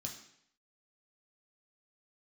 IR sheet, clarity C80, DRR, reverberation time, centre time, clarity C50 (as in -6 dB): 10.5 dB, -0.5 dB, 0.70 s, 24 ms, 7.5 dB